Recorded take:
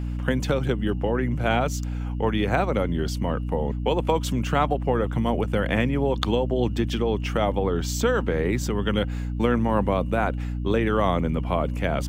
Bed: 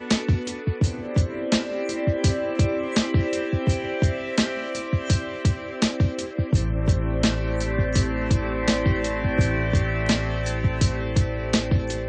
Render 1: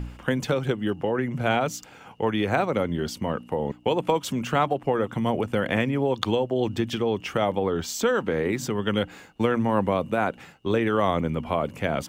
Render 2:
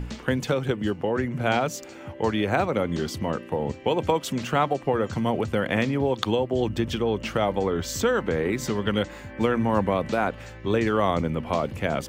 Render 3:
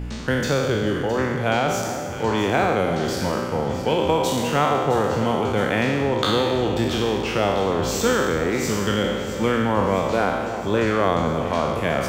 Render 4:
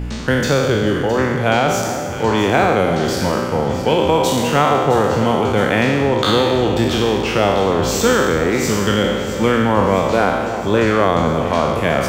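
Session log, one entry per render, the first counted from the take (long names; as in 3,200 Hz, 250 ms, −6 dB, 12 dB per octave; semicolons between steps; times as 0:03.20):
hum removal 60 Hz, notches 5
mix in bed −16.5 dB
peak hold with a decay on every bin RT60 1.43 s; delay that swaps between a low-pass and a high-pass 332 ms, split 1,200 Hz, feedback 77%, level −10 dB
level +5.5 dB; brickwall limiter −2 dBFS, peak gain reduction 2.5 dB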